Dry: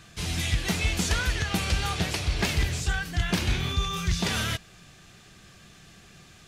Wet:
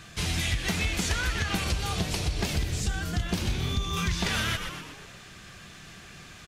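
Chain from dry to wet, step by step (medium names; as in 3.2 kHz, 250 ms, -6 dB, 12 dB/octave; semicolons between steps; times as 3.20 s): peaking EQ 1.8 kHz +2 dB 1.7 oct, from 1.64 s -5.5 dB, from 3.97 s +4 dB; frequency-shifting echo 123 ms, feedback 49%, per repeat -130 Hz, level -10.5 dB; compression 4:1, threshold -28 dBFS, peak gain reduction 8.5 dB; trim +3 dB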